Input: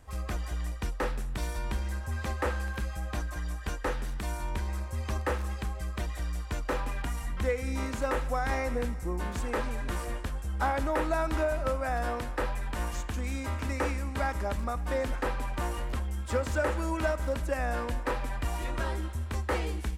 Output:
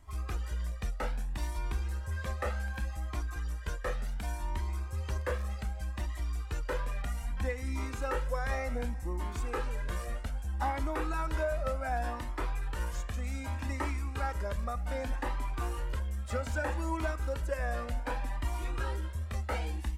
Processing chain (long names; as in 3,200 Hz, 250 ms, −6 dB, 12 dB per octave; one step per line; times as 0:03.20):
flanger whose copies keep moving one way rising 0.65 Hz